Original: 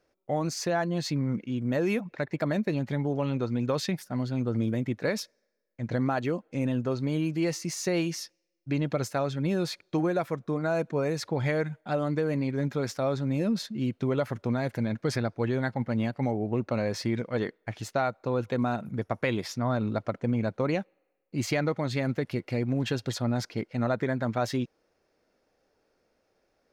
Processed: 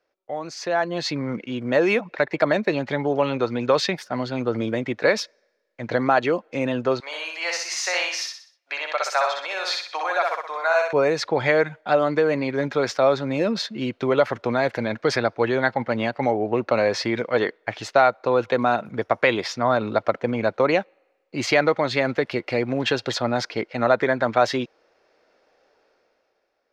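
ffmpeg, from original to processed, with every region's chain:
-filter_complex "[0:a]asettb=1/sr,asplit=3[s0][s1][s2];[s0]atrim=end=7.004[s3];[s1]atrim=start=7:end=10.93,asetpts=PTS-STARTPTS,afade=t=in:d=0.004:c=qsin,afade=t=out:st=3.926:d=0.004:c=qsin,highpass=f=730:w=0.5412,highpass=f=730:w=1.3066,aecho=1:1:62|124|186|248|310:0.708|0.29|0.119|0.0488|0.02,atrim=end_sample=173313[s4];[s2]atrim=start=10.926[s5];[s3][s4]acrossfade=d=0.004:c1=hsin:c2=qsin[s6];[s6][s5]acrossfade=d=0.004:c1=qsin:c2=hsin,acrossover=split=370 5800:gain=0.178 1 0.1[s7][s8][s9];[s7][s8][s9]amix=inputs=3:normalize=0,dynaudnorm=f=130:g=13:m=3.98"

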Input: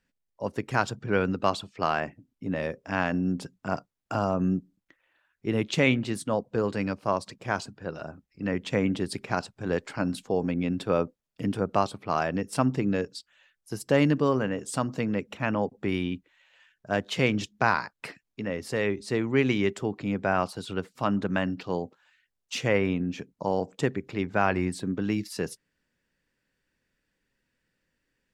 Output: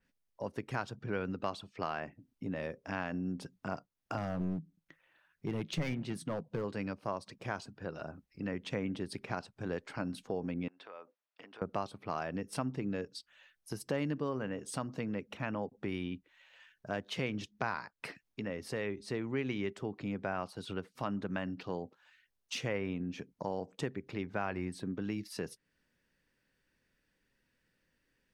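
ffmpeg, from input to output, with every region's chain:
-filter_complex "[0:a]asettb=1/sr,asplit=3[s0][s1][s2];[s0]atrim=end=4.174[s3];[s1]atrim=start=4.17:end=6.64,asetpts=PTS-STARTPTS,afade=t=in:d=0.004:c=qsin,afade=t=out:st=2.466:d=0.004:c=qsin,equalizer=f=160:t=o:w=0.3:g=13,aeval=exprs='clip(val(0),-1,0.0596)':c=same[s4];[s2]atrim=start=6.636[s5];[s3][s4]acrossfade=d=0.004:c1=hsin:c2=qsin[s6];[s6][s5]acrossfade=d=0.004:c1=qsin:c2=hsin,asettb=1/sr,asplit=3[s7][s8][s9];[s7]atrim=end=10.684[s10];[s8]atrim=start=10.68:end=11.62,asetpts=PTS-STARTPTS,afade=t=in:d=0.004:c=qsin,afade=t=out:st=0.936:d=0.004:c=qsin,acompressor=threshold=0.0158:ratio=16:attack=3.2:release=140:knee=1:detection=peak,highpass=720,lowpass=3200[s11];[s9]atrim=start=11.616[s12];[s10][s11]acrossfade=d=0.004:c1=hsin:c2=qsin[s13];[s13][s12]acrossfade=d=0.004:c1=qsin:c2=hsin,bandreject=f=7300:w=8.9,acompressor=threshold=0.00891:ratio=2,adynamicequalizer=threshold=0.00178:dfrequency=4100:dqfactor=0.7:tfrequency=4100:tqfactor=0.7:attack=5:release=100:ratio=0.375:range=2:mode=cutabove:tftype=highshelf"

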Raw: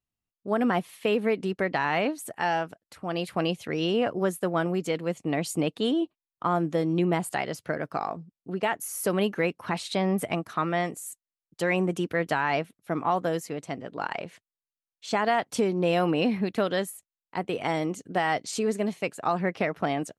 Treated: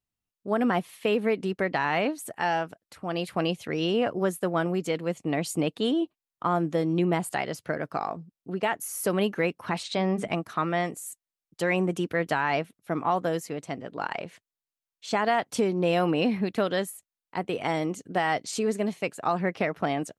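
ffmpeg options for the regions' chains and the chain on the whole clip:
-filter_complex "[0:a]asettb=1/sr,asplit=3[s0][s1][s2];[s0]atrim=end=9.834[s3];[s1]atrim=start=9.83:end=10.28,asetpts=PTS-STARTPTS,afade=t=in:d=0.004:c=qsin,afade=t=out:st=0.446:d=0.004:c=qsin,lowpass=f=7700:w=0.5412,lowpass=f=7700:w=1.3066,bandreject=f=50:t=h:w=6,bandreject=f=100:t=h:w=6,bandreject=f=150:t=h:w=6,bandreject=f=200:t=h:w=6,bandreject=f=250:t=h:w=6,bandreject=f=300:t=h:w=6,bandreject=f=350:t=h:w=6,bandreject=f=400:t=h:w=6[s4];[s2]atrim=start=10.276[s5];[s3][s4]acrossfade=d=0.004:c1=hsin:c2=qsin[s6];[s6][s5]acrossfade=d=0.004:c1=qsin:c2=hsin"

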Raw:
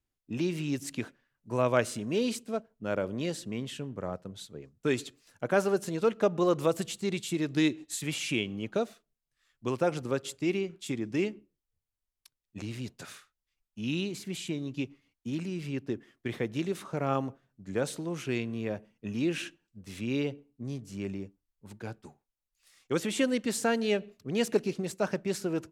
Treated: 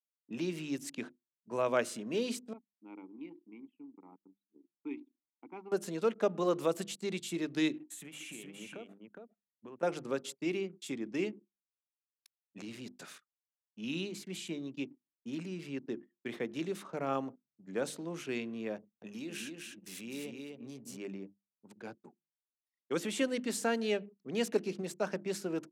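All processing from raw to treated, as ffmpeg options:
-filter_complex "[0:a]asettb=1/sr,asplit=3[s0][s1][s2];[s0]atrim=end=2.534[s3];[s1]atrim=start=2.53:end=5.72,asetpts=PTS-STARTPTS,afade=t=in:d=0.004:c=qsin,afade=t=out:st=3.186:d=0.004:c=qsin,asplit=3[s4][s5][s6];[s4]bandpass=f=300:t=q:w=8,volume=1[s7];[s5]bandpass=f=870:t=q:w=8,volume=0.501[s8];[s6]bandpass=f=2240:t=q:w=8,volume=0.355[s9];[s7][s8][s9]amix=inputs=3:normalize=0,equalizer=f=1300:t=o:w=1:g=4[s10];[s2]atrim=start=5.716[s11];[s3][s10]acrossfade=d=0.004:c1=hsin:c2=qsin[s12];[s12][s11]acrossfade=d=0.004:c1=qsin:c2=hsin,asettb=1/sr,asplit=3[s13][s14][s15];[s13]atrim=end=7.794[s16];[s14]atrim=start=7.79:end=9.83,asetpts=PTS-STARTPTS,afade=t=in:d=0.004:c=qsin,afade=t=out:st=2.036:d=0.004:c=qsin,equalizer=f=4700:t=o:w=0.7:g=-12.5,acompressor=threshold=0.0126:ratio=10:attack=3.2:release=140:knee=1:detection=peak,aecho=1:1:413:0.631,atrim=end_sample=89964[s17];[s15]atrim=start=9.826[s18];[s16][s17]acrossfade=d=0.004:c1=hsin:c2=qsin[s19];[s19][s18]acrossfade=d=0.004:c1=qsin:c2=hsin,asettb=1/sr,asplit=3[s20][s21][s22];[s20]atrim=end=18.764[s23];[s21]atrim=start=18.76:end=20.97,asetpts=PTS-STARTPTS,afade=t=in:d=0.004:c=qsin,afade=t=out:st=2.206:d=0.004:c=qsin,aemphasis=mode=production:type=50kf,acompressor=threshold=0.0141:ratio=2.5:attack=3.2:release=140:knee=1:detection=peak,aecho=1:1:255|510|765:0.631|0.126|0.0252,atrim=end_sample=97461[s24];[s22]atrim=start=20.966[s25];[s23][s24]acrossfade=d=0.004:c1=hsin:c2=qsin[s26];[s26][s25]acrossfade=d=0.004:c1=qsin:c2=hsin,bandreject=f=50:t=h:w=6,bandreject=f=100:t=h:w=6,bandreject=f=150:t=h:w=6,bandreject=f=200:t=h:w=6,bandreject=f=250:t=h:w=6,bandreject=f=300:t=h:w=6,bandreject=f=350:t=h:w=6,anlmdn=0.00398,highpass=f=170:w=0.5412,highpass=f=170:w=1.3066,volume=0.631"

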